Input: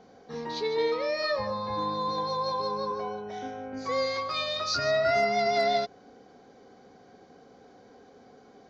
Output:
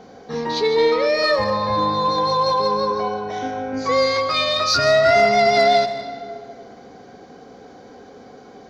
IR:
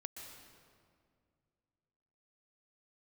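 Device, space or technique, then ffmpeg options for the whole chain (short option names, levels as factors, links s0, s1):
saturated reverb return: -filter_complex "[0:a]asplit=2[s0][s1];[1:a]atrim=start_sample=2205[s2];[s1][s2]afir=irnorm=-1:irlink=0,asoftclip=type=tanh:threshold=0.0501,volume=1.06[s3];[s0][s3]amix=inputs=2:normalize=0,volume=2.24"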